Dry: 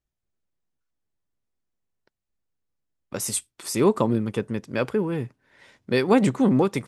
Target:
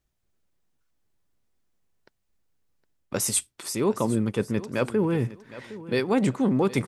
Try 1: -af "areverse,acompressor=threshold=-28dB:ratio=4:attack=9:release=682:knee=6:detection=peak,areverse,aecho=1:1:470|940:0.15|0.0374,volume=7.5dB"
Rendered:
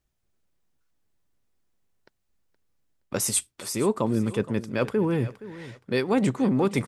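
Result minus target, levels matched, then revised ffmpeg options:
echo 0.292 s early
-af "areverse,acompressor=threshold=-28dB:ratio=4:attack=9:release=682:knee=6:detection=peak,areverse,aecho=1:1:762|1524:0.15|0.0374,volume=7.5dB"

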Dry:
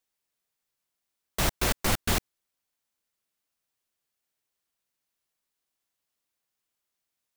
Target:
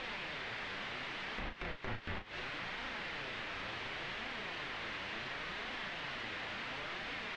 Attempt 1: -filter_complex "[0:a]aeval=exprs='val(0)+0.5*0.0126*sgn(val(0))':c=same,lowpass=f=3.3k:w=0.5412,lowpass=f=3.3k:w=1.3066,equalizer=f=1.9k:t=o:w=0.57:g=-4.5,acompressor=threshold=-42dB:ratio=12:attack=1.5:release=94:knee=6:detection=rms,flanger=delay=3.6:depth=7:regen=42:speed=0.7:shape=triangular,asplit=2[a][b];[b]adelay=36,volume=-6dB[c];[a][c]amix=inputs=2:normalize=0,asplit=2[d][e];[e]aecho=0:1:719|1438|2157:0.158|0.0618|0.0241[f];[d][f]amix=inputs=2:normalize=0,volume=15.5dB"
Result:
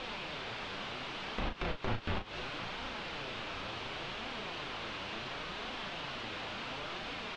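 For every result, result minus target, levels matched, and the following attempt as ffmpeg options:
compressor: peak gain reduction -7 dB; 2000 Hz band -3.0 dB
-filter_complex "[0:a]aeval=exprs='val(0)+0.5*0.0126*sgn(val(0))':c=same,lowpass=f=3.3k:w=0.5412,lowpass=f=3.3k:w=1.3066,equalizer=f=1.9k:t=o:w=0.57:g=-4.5,acompressor=threshold=-49dB:ratio=12:attack=1.5:release=94:knee=6:detection=rms,flanger=delay=3.6:depth=7:regen=42:speed=0.7:shape=triangular,asplit=2[a][b];[b]adelay=36,volume=-6dB[c];[a][c]amix=inputs=2:normalize=0,asplit=2[d][e];[e]aecho=0:1:719|1438|2157:0.158|0.0618|0.0241[f];[d][f]amix=inputs=2:normalize=0,volume=15.5dB"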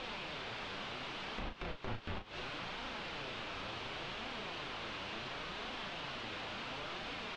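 2000 Hz band -2.5 dB
-filter_complex "[0:a]aeval=exprs='val(0)+0.5*0.0126*sgn(val(0))':c=same,lowpass=f=3.3k:w=0.5412,lowpass=f=3.3k:w=1.3066,equalizer=f=1.9k:t=o:w=0.57:g=4.5,acompressor=threshold=-49dB:ratio=12:attack=1.5:release=94:knee=6:detection=rms,flanger=delay=3.6:depth=7:regen=42:speed=0.7:shape=triangular,asplit=2[a][b];[b]adelay=36,volume=-6dB[c];[a][c]amix=inputs=2:normalize=0,asplit=2[d][e];[e]aecho=0:1:719|1438|2157:0.158|0.0618|0.0241[f];[d][f]amix=inputs=2:normalize=0,volume=15.5dB"

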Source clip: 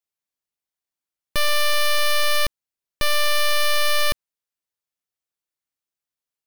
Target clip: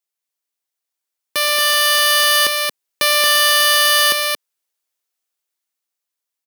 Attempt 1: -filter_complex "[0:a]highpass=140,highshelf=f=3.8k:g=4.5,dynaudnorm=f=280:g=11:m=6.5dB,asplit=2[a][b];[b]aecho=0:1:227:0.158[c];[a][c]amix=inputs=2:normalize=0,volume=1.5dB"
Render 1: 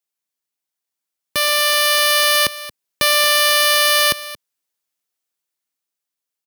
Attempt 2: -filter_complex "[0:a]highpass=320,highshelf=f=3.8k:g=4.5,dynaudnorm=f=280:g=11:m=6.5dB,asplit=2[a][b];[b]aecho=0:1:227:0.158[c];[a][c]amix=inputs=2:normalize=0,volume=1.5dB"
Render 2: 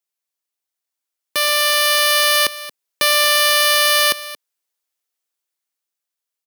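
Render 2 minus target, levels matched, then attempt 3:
echo-to-direct -11.5 dB
-filter_complex "[0:a]highpass=320,highshelf=f=3.8k:g=4.5,dynaudnorm=f=280:g=11:m=6.5dB,asplit=2[a][b];[b]aecho=0:1:227:0.596[c];[a][c]amix=inputs=2:normalize=0,volume=1.5dB"

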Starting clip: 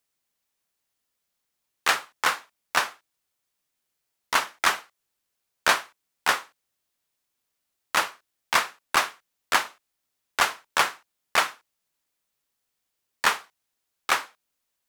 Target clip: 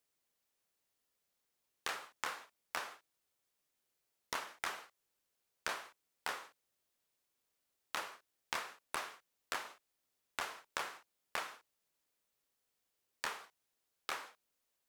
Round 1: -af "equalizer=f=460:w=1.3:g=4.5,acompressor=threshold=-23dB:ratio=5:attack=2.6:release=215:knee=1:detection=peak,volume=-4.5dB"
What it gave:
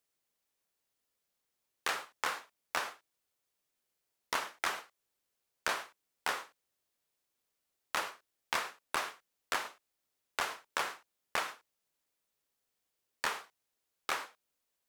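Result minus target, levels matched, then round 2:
compressor: peak gain reduction -6.5 dB
-af "equalizer=f=460:w=1.3:g=4.5,acompressor=threshold=-31dB:ratio=5:attack=2.6:release=215:knee=1:detection=peak,volume=-4.5dB"

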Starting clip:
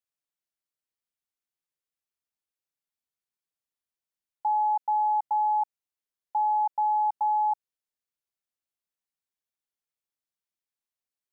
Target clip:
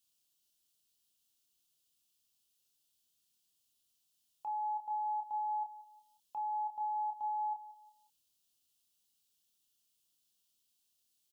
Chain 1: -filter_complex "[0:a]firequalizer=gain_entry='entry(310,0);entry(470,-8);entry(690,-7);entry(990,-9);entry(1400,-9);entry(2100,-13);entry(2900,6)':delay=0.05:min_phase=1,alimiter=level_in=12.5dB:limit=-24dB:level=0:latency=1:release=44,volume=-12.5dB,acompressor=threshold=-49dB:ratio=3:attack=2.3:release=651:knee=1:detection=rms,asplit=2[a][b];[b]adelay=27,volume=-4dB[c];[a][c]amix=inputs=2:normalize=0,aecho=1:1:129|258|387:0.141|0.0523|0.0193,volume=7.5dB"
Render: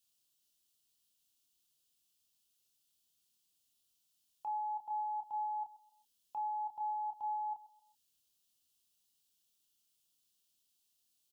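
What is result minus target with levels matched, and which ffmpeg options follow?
echo 50 ms early
-filter_complex "[0:a]firequalizer=gain_entry='entry(310,0);entry(470,-8);entry(690,-7);entry(990,-9);entry(1400,-9);entry(2100,-13);entry(2900,6)':delay=0.05:min_phase=1,alimiter=level_in=12.5dB:limit=-24dB:level=0:latency=1:release=44,volume=-12.5dB,acompressor=threshold=-49dB:ratio=3:attack=2.3:release=651:knee=1:detection=rms,asplit=2[a][b];[b]adelay=27,volume=-4dB[c];[a][c]amix=inputs=2:normalize=0,aecho=1:1:179|358|537:0.141|0.0523|0.0193,volume=7.5dB"

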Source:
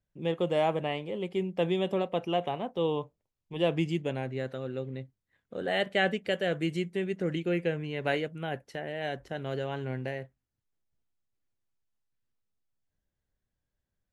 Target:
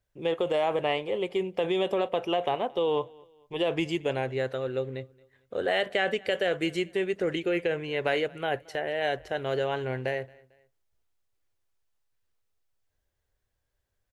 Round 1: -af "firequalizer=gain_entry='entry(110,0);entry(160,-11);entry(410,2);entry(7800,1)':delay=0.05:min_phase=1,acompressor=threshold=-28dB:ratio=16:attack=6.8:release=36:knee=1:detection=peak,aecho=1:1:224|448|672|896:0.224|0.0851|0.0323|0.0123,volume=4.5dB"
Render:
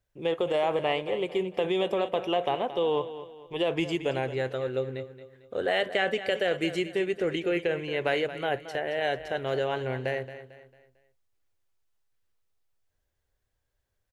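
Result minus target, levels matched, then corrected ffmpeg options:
echo-to-direct +12 dB
-af "firequalizer=gain_entry='entry(110,0);entry(160,-11);entry(410,2);entry(7800,1)':delay=0.05:min_phase=1,acompressor=threshold=-28dB:ratio=16:attack=6.8:release=36:knee=1:detection=peak,aecho=1:1:224|448:0.0562|0.0214,volume=4.5dB"

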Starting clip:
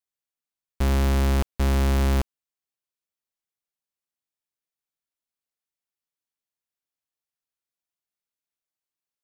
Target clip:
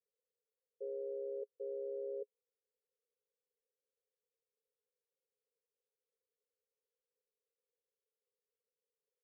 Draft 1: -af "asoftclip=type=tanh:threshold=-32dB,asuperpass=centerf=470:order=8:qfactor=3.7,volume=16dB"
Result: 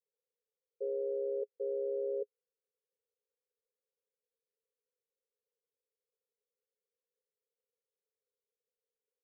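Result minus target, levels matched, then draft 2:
soft clip: distortion -8 dB
-af "asoftclip=type=tanh:threshold=-38.5dB,asuperpass=centerf=470:order=8:qfactor=3.7,volume=16dB"

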